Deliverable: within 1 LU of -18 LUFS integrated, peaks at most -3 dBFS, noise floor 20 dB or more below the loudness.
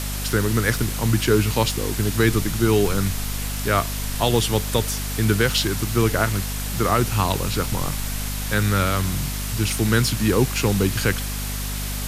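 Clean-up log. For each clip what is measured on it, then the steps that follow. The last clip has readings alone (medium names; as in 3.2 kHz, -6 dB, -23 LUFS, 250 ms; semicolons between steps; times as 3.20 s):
hum 50 Hz; highest harmonic 250 Hz; hum level -26 dBFS; noise floor -27 dBFS; noise floor target -42 dBFS; loudness -21.5 LUFS; peak level -5.5 dBFS; loudness target -18.0 LUFS
-> de-hum 50 Hz, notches 5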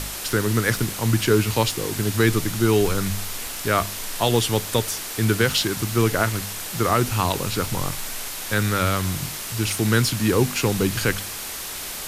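hum not found; noise floor -32 dBFS; noise floor target -43 dBFS
-> noise reduction 11 dB, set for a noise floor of -32 dBFS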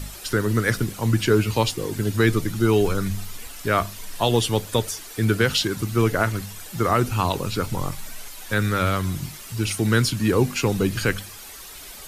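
noise floor -40 dBFS; noise floor target -43 dBFS
-> noise reduction 6 dB, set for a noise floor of -40 dBFS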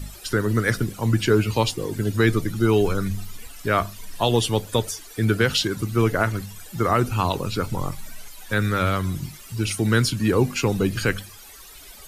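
noise floor -44 dBFS; loudness -23.0 LUFS; peak level -6.5 dBFS; loudness target -18.0 LUFS
-> trim +5 dB; peak limiter -3 dBFS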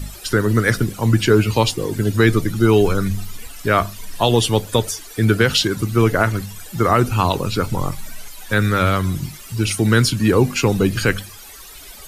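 loudness -18.0 LUFS; peak level -3.0 dBFS; noise floor -39 dBFS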